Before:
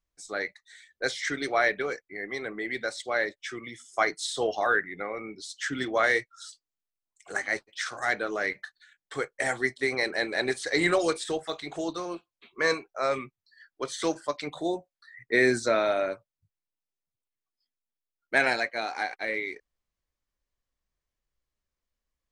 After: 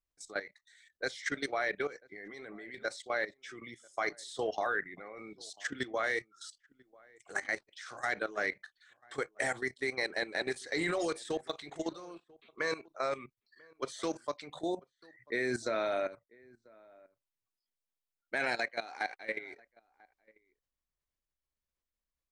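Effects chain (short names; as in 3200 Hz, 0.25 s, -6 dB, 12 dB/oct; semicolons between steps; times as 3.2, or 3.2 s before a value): level quantiser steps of 15 dB; outdoor echo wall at 170 m, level -25 dB; gain -2 dB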